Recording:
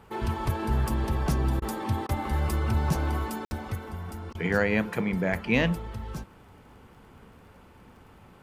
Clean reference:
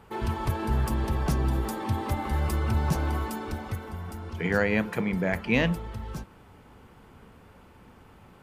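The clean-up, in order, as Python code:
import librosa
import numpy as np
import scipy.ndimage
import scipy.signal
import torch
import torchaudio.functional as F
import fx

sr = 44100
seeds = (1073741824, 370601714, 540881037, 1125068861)

y = fx.fix_declick_ar(x, sr, threshold=6.5)
y = fx.fix_ambience(y, sr, seeds[0], print_start_s=7.91, print_end_s=8.41, start_s=3.45, end_s=3.51)
y = fx.fix_interpolate(y, sr, at_s=(1.6, 2.07, 4.33), length_ms=18.0)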